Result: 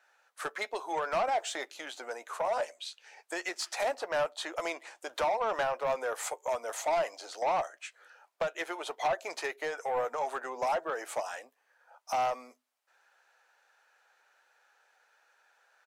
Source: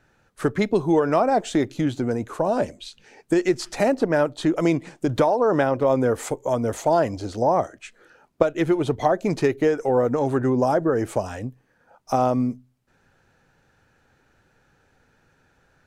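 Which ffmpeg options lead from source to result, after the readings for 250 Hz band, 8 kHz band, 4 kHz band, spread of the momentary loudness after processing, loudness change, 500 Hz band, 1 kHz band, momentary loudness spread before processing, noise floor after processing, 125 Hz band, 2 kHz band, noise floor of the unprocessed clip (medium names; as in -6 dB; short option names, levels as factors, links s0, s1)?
-26.5 dB, -3.0 dB, -2.5 dB, 11 LU, -11.5 dB, -12.5 dB, -6.5 dB, 7 LU, -74 dBFS, -30.0 dB, -4.5 dB, -64 dBFS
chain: -filter_complex "[0:a]highpass=f=640:w=0.5412,highpass=f=640:w=1.3066,asoftclip=type=tanh:threshold=0.0794,asplit=2[s0][s1];[s1]adelay=12,volume=0.211[s2];[s0][s2]amix=inputs=2:normalize=0,volume=0.75"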